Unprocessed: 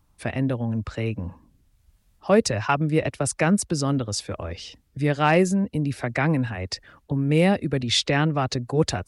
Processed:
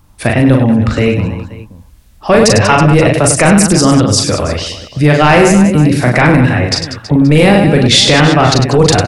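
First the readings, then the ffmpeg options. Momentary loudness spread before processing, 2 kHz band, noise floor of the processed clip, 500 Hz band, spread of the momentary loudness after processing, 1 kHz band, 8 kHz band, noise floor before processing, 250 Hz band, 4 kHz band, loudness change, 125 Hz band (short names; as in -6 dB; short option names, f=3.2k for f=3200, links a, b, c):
13 LU, +15.0 dB, -41 dBFS, +14.0 dB, 9 LU, +14.5 dB, +16.5 dB, -64 dBFS, +14.5 dB, +16.0 dB, +14.5 dB, +14.5 dB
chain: -af "aecho=1:1:40|100|190|325|527.5:0.631|0.398|0.251|0.158|0.1,apsyclip=17.5dB,volume=-2dB"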